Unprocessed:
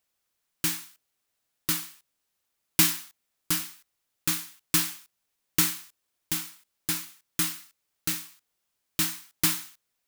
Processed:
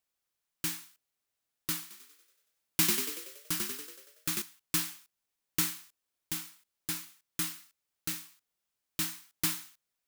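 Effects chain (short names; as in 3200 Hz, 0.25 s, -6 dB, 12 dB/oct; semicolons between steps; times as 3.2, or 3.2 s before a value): 1.81–4.42 frequency-shifting echo 94 ms, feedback 56%, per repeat +43 Hz, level -3 dB; gain -6.5 dB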